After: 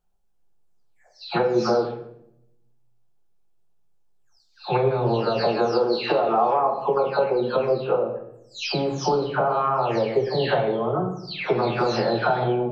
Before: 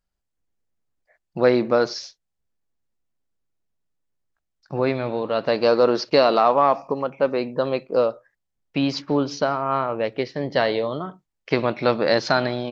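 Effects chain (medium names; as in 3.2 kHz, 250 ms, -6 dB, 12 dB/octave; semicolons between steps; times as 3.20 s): delay that grows with frequency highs early, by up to 429 ms; compression 10:1, threshold -25 dBFS, peak gain reduction 13 dB; graphic EQ with 31 bands 125 Hz +5 dB, 250 Hz -5 dB, 400 Hz +6 dB, 800 Hz +10 dB, 2 kHz -7 dB; on a send: reverberation RT60 0.80 s, pre-delay 6 ms, DRR 3.5 dB; on the sum: trim +3 dB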